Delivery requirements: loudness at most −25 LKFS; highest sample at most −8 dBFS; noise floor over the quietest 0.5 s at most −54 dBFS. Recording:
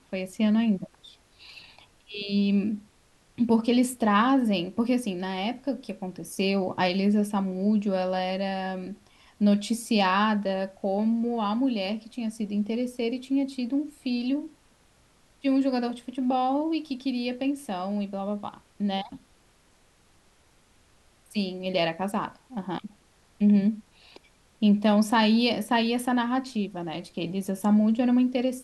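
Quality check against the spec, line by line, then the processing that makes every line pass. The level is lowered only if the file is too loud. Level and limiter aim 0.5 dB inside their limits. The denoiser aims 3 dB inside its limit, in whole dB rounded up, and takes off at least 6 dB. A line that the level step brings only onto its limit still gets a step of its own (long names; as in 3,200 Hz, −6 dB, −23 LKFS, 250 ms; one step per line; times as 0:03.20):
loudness −26.5 LKFS: in spec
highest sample −10.5 dBFS: in spec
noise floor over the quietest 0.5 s −61 dBFS: in spec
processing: no processing needed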